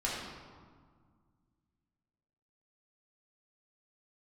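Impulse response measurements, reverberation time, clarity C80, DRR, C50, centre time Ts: 1.8 s, 2.0 dB, -6.5 dB, 0.0 dB, 87 ms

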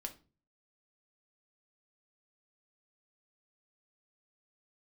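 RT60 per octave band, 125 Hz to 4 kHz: 0.60, 0.50, 0.40, 0.30, 0.30, 0.30 s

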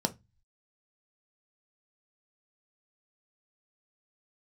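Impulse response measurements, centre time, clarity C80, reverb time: 5 ms, 31.0 dB, 0.20 s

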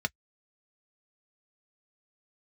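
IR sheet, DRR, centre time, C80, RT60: 6.0 dB, 2 ms, 60.0 dB, not exponential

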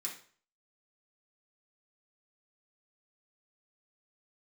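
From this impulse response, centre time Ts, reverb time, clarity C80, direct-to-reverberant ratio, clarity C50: 22 ms, 0.45 s, 12.0 dB, -4.0 dB, 7.5 dB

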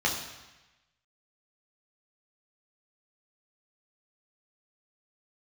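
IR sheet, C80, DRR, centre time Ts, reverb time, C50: 8.0 dB, -2.0 dB, 36 ms, 1.1 s, 6.0 dB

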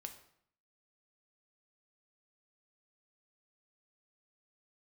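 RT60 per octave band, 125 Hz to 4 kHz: 0.75, 0.75, 0.65, 0.65, 0.60, 0.55 s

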